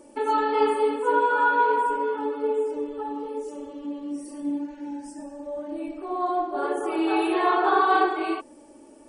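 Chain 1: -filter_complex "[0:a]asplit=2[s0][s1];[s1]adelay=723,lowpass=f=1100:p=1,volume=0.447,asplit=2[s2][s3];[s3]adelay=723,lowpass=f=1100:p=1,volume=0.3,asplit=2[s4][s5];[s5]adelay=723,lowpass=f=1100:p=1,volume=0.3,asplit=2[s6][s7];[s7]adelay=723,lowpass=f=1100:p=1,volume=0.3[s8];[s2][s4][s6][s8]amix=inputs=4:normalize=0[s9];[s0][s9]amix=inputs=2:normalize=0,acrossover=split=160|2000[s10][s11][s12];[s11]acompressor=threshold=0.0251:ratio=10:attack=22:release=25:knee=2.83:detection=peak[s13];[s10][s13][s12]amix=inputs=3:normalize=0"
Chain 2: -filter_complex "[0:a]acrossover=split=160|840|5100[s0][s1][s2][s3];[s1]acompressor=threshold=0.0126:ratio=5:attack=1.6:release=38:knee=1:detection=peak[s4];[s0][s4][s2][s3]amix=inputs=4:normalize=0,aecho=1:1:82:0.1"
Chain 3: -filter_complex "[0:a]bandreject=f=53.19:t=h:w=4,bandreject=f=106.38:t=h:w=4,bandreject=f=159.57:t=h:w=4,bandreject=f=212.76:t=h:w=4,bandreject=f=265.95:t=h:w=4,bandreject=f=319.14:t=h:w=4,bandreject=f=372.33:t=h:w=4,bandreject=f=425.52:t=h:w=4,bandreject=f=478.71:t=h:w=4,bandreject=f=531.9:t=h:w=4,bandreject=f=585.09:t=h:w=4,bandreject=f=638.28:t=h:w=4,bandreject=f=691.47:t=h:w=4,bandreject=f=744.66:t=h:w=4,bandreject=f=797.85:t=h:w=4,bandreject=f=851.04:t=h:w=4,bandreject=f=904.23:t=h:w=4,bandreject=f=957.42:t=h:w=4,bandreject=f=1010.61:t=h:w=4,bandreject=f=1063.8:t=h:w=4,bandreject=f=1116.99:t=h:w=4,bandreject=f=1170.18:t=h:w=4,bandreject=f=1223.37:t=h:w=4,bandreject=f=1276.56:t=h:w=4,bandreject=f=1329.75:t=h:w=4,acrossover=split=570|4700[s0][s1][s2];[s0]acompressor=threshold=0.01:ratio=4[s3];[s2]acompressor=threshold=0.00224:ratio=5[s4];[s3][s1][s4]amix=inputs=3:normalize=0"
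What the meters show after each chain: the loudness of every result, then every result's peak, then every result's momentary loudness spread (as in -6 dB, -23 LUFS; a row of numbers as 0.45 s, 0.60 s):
-30.5 LUFS, -29.0 LUFS, -27.0 LUFS; -15.5 dBFS, -12.0 dBFS, -11.0 dBFS; 7 LU, 16 LU, 18 LU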